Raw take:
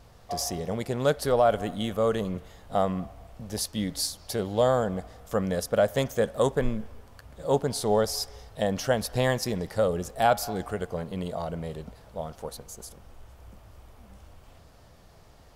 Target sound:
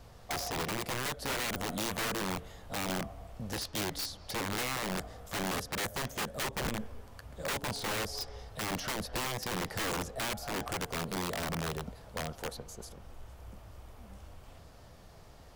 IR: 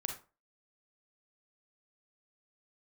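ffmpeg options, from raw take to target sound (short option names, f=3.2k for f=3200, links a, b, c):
-filter_complex "[0:a]acrossover=split=350|5100[a][b][c];[a]acompressor=threshold=-31dB:ratio=4[d];[b]acompressor=threshold=-33dB:ratio=4[e];[c]acompressor=threshold=-52dB:ratio=4[f];[d][e][f]amix=inputs=3:normalize=0,aeval=exprs='(mod(26.6*val(0)+1,2)-1)/26.6':c=same"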